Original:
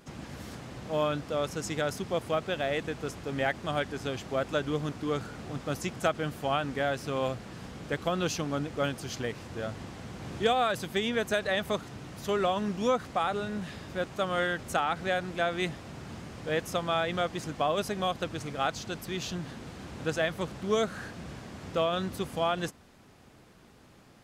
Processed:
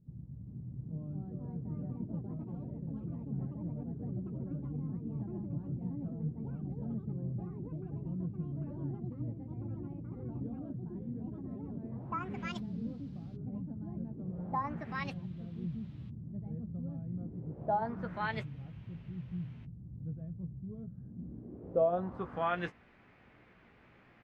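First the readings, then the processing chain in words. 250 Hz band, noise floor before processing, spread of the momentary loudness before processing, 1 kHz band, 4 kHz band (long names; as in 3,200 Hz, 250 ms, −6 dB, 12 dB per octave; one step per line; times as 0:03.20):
−3.5 dB, −56 dBFS, 13 LU, −9.0 dB, −21.5 dB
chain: low-pass filter sweep 140 Hz → 2,200 Hz, 0:20.94–0:22.61
double-tracking delay 17 ms −8.5 dB
delay with pitch and tempo change per echo 414 ms, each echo +4 semitones, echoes 3
level −6.5 dB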